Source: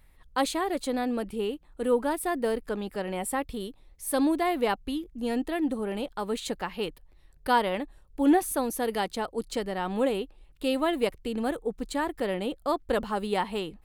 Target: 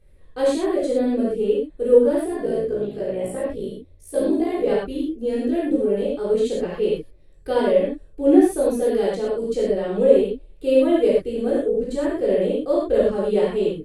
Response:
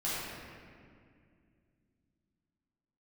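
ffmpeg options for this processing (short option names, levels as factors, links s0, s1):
-filter_complex "[0:a]lowshelf=f=680:t=q:w=3:g=7.5,asplit=3[s0][s1][s2];[s0]afade=t=out:st=2.18:d=0.02[s3];[s1]tremolo=f=58:d=0.824,afade=t=in:st=2.18:d=0.02,afade=t=out:st=4.66:d=0.02[s4];[s2]afade=t=in:st=4.66:d=0.02[s5];[s3][s4][s5]amix=inputs=3:normalize=0[s6];[1:a]atrim=start_sample=2205,atrim=end_sample=3087,asetrate=23373,aresample=44100[s7];[s6][s7]afir=irnorm=-1:irlink=0,volume=0.376"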